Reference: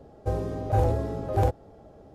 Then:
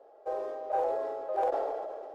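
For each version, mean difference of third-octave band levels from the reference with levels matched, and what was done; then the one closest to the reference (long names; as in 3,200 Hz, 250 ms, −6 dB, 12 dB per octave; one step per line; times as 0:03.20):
10.0 dB: inverse Chebyshev high-pass filter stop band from 210 Hz, stop band 50 dB
spectral tilt −4.5 dB per octave
level that may fall only so fast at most 27 dB per second
level −3 dB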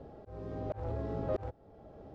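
6.0 dB: phase distortion by the signal itself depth 0.19 ms
low-pass filter 4,100 Hz 12 dB per octave
volume swells 702 ms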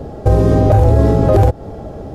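3.5 dB: low-shelf EQ 240 Hz +5.5 dB
downward compressor, threshold −23 dBFS, peak gain reduction 9.5 dB
boost into a limiter +20 dB
level −1 dB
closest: third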